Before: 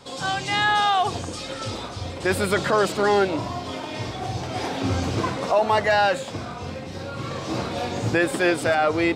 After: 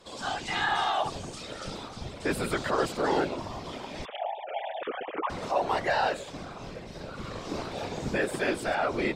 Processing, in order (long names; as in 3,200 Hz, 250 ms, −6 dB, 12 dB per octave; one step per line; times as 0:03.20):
0:04.05–0:05.30: three sine waves on the formant tracks
random phases in short frames
level −7.5 dB